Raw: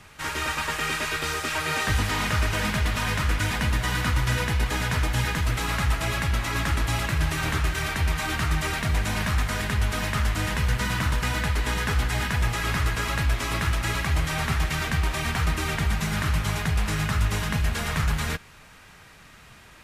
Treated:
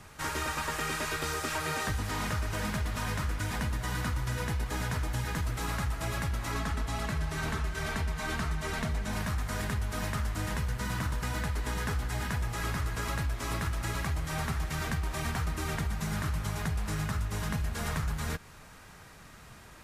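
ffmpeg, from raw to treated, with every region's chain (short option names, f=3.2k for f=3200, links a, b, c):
-filter_complex "[0:a]asettb=1/sr,asplit=3[a][b][c];[a]atrim=end=6.544[d];[b]atrim=start=6.54:end=9.13,asetpts=PTS-STARTPTS,afade=t=in:d=0.004:c=qsin,afade=t=out:st=2.586:d=0.004:c=qsin,highshelf=f=11k:g=-10.5,aecho=1:1:4.6:0.46,atrim=end_sample=114219[e];[c]atrim=start=9.126[f];[d][e]acrossfade=d=0.004:c1=hsin:c2=qsin[g];[g][f]acrossfade=d=0.004:c1=qsin:c2=hsin,equalizer=f=2.7k:t=o:w=1.4:g=-6.5,acompressor=threshold=-29dB:ratio=6"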